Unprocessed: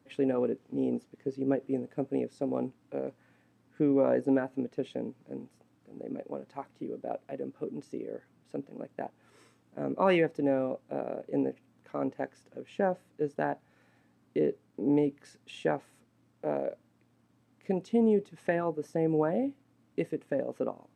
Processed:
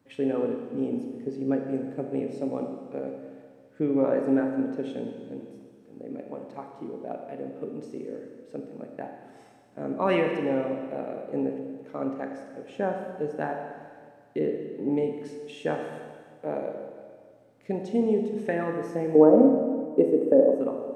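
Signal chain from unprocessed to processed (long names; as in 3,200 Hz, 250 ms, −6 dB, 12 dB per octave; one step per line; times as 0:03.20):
0:19.15–0:20.60: octave-band graphic EQ 125/250/500/1,000/2,000/4,000 Hz −7/+10/+11/+4/−10/−10 dB
four-comb reverb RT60 1.8 s, combs from 26 ms, DRR 3 dB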